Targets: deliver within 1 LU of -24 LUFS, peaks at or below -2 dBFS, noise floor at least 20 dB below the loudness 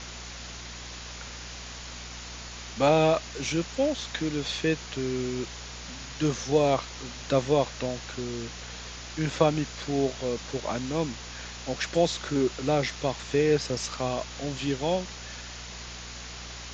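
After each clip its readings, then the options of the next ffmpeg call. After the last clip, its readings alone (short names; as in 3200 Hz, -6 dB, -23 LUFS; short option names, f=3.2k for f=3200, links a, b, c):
hum 60 Hz; harmonics up to 240 Hz; hum level -42 dBFS; noise floor -41 dBFS; noise floor target -50 dBFS; loudness -29.5 LUFS; peak -8.0 dBFS; loudness target -24.0 LUFS
-> -af "bandreject=f=60:t=h:w=4,bandreject=f=120:t=h:w=4,bandreject=f=180:t=h:w=4,bandreject=f=240:t=h:w=4"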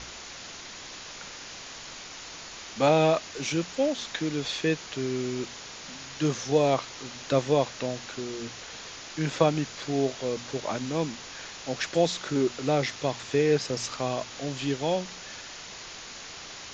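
hum none; noise floor -43 dBFS; noise floor target -49 dBFS
-> -af "afftdn=nr=6:nf=-43"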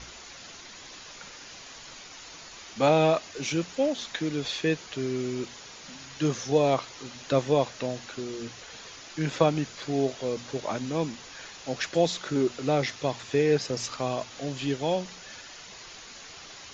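noise floor -46 dBFS; noise floor target -48 dBFS
-> -af "afftdn=nr=6:nf=-46"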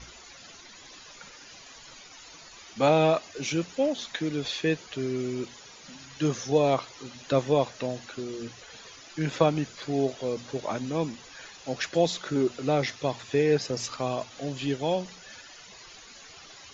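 noise floor -49 dBFS; loudness -28.0 LUFS; peak -8.5 dBFS; loudness target -24.0 LUFS
-> -af "volume=4dB"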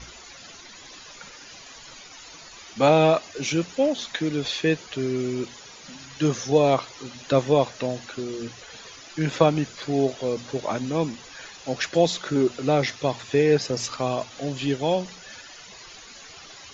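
loudness -24.0 LUFS; peak -4.5 dBFS; noise floor -45 dBFS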